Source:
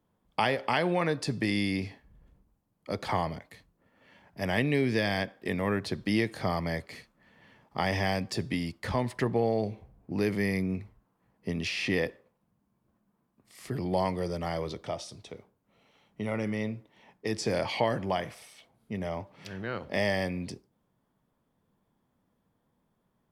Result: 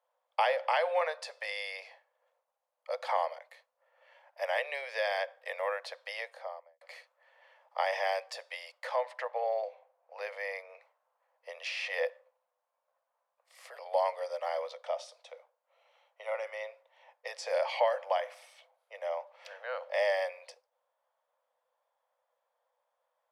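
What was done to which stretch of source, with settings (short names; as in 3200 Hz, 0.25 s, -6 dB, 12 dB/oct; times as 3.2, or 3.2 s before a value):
6.03–6.81 studio fade out
8.96–10.82 LPF 3900 Hz 6 dB/oct
whole clip: Chebyshev high-pass 500 Hz, order 8; tilt -2.5 dB/oct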